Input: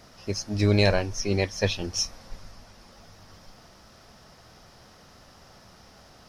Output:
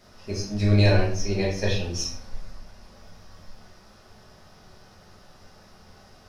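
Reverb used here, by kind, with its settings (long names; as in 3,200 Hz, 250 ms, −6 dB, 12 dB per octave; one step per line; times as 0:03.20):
rectangular room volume 90 cubic metres, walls mixed, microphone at 1.3 metres
level −6.5 dB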